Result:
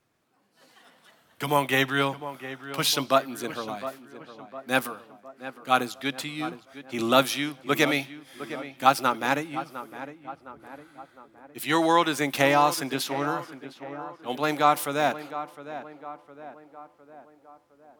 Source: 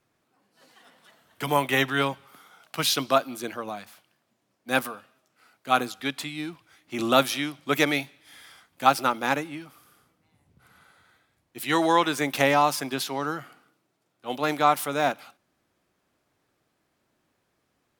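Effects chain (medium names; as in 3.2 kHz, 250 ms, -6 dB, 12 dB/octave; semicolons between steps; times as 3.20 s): tape echo 709 ms, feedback 58%, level -11.5 dB, low-pass 1.7 kHz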